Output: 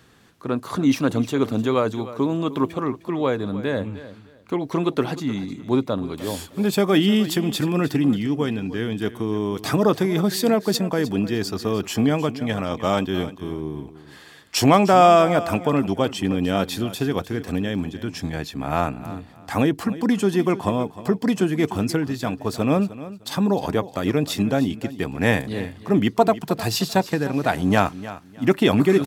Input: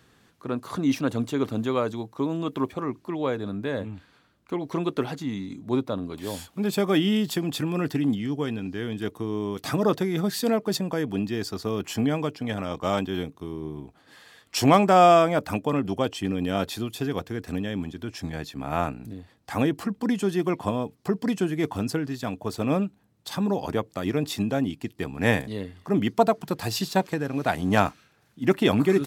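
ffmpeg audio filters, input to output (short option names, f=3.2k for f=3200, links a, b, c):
-filter_complex "[0:a]asplit=2[a][b];[b]alimiter=limit=-13dB:level=0:latency=1:release=145,volume=-2.5dB[c];[a][c]amix=inputs=2:normalize=0,aecho=1:1:306|612:0.168|0.0386"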